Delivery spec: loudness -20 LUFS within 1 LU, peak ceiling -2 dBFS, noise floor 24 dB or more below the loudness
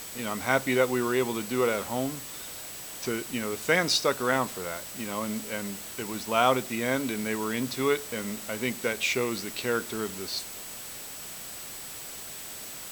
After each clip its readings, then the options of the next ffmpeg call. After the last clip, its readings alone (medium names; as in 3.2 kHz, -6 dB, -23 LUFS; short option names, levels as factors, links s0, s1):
steady tone 7.9 kHz; tone level -46 dBFS; noise floor -41 dBFS; noise floor target -54 dBFS; loudness -29.5 LUFS; peak level -8.0 dBFS; loudness target -20.0 LUFS
-> -af "bandreject=f=7900:w=30"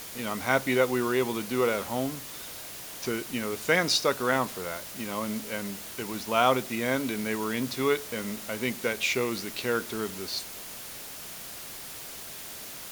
steady tone not found; noise floor -41 dBFS; noise floor target -54 dBFS
-> -af "afftdn=nr=13:nf=-41"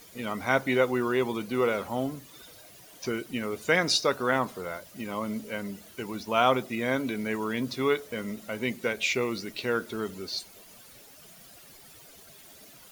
noise floor -52 dBFS; noise floor target -53 dBFS
-> -af "afftdn=nr=6:nf=-52"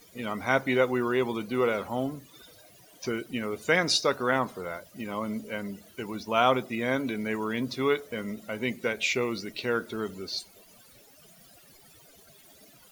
noise floor -56 dBFS; loudness -29.0 LUFS; peak level -8.5 dBFS; loudness target -20.0 LUFS
-> -af "volume=2.82,alimiter=limit=0.794:level=0:latency=1"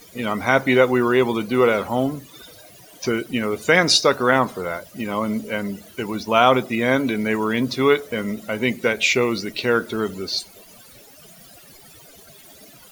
loudness -20.5 LUFS; peak level -2.0 dBFS; noise floor -47 dBFS